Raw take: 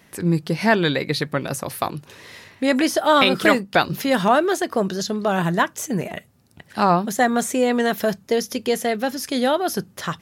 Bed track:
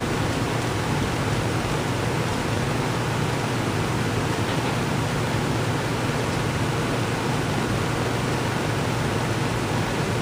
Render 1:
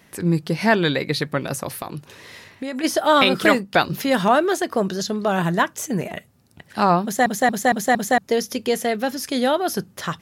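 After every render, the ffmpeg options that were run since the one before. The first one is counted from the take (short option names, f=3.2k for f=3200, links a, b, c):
-filter_complex "[0:a]asplit=3[a][b][c];[a]afade=t=out:st=1.7:d=0.02[d];[b]acompressor=threshold=-25dB:ratio=6:attack=3.2:release=140:knee=1:detection=peak,afade=t=in:st=1.7:d=0.02,afade=t=out:st=2.83:d=0.02[e];[c]afade=t=in:st=2.83:d=0.02[f];[d][e][f]amix=inputs=3:normalize=0,asplit=6[g][h][i][j][k][l];[g]atrim=end=7.262[m];[h]atrim=start=7.028:end=7.262[n];[i]atrim=start=7.028:end=7.262[o];[j]atrim=start=7.028:end=7.262[p];[k]atrim=start=7.028:end=7.262[q];[l]atrim=start=8.178[r];[m][n]acrossfade=d=0.004:c1=hsin:c2=hsin[s];[s][o]acrossfade=d=0.004:c1=hsin:c2=hsin[t];[t][p]acrossfade=d=0.004:c1=hsin:c2=hsin[u];[u][q]acrossfade=d=0.004:c1=hsin:c2=hsin[v];[v][r]acrossfade=d=0.004:c1=hsin:c2=hsin"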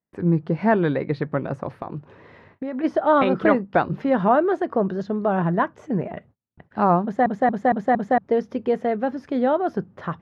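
-af "agate=range=-34dB:threshold=-46dB:ratio=16:detection=peak,lowpass=1.2k"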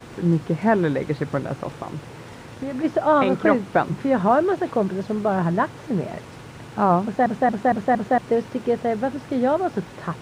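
-filter_complex "[1:a]volume=-16dB[a];[0:a][a]amix=inputs=2:normalize=0"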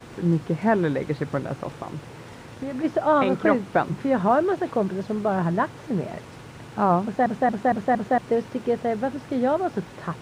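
-af "volume=-2dB"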